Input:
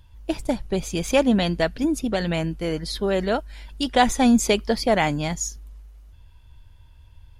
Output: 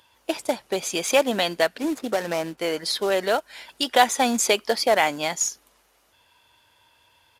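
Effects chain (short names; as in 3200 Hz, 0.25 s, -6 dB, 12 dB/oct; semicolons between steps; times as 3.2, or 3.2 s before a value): 1.78–2.58 median filter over 15 samples; HPF 480 Hz 12 dB/oct; in parallel at +1 dB: compressor 5:1, threshold -30 dBFS, peak gain reduction 16 dB; on the sum: short-mantissa float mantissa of 2-bit; downsampling 32000 Hz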